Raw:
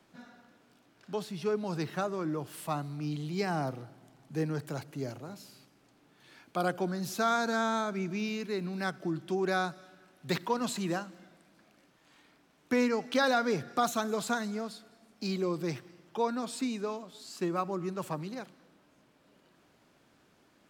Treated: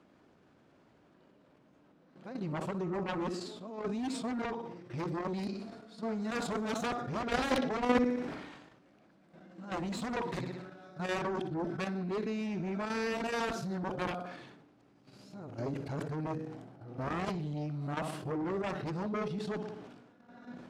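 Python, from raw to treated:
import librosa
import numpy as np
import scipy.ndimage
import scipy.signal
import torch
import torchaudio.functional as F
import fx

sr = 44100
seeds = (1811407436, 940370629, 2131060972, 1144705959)

y = np.flip(x).copy()
y = scipy.signal.sosfilt(scipy.signal.butter(2, 9300.0, 'lowpass', fs=sr, output='sos'), y)
y = fx.echo_feedback(y, sr, ms=61, feedback_pct=49, wet_db=-14.0)
y = fx.cheby_harmonics(y, sr, harmonics=(7,), levels_db=(-9,), full_scale_db=-14.5)
y = 10.0 ** (-14.5 / 20.0) * np.tanh(y / 10.0 ** (-14.5 / 20.0))
y = fx.tilt_eq(y, sr, slope=-3.5)
y = fx.level_steps(y, sr, step_db=10)
y = scipy.signal.sosfilt(scipy.signal.butter(2, 51.0, 'highpass', fs=sr, output='sos'), y)
y = fx.low_shelf(y, sr, hz=210.0, db=-11.0)
y = fx.sustainer(y, sr, db_per_s=47.0)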